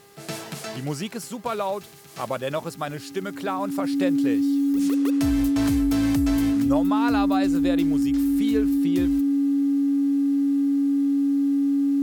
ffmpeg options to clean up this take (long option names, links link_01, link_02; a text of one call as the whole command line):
ffmpeg -i in.wav -af "bandreject=frequency=402.2:width_type=h:width=4,bandreject=frequency=804.4:width_type=h:width=4,bandreject=frequency=1206.6:width_type=h:width=4,bandreject=frequency=1608.8:width_type=h:width=4,bandreject=frequency=2011:width_type=h:width=4,bandreject=frequency=280:width=30" out.wav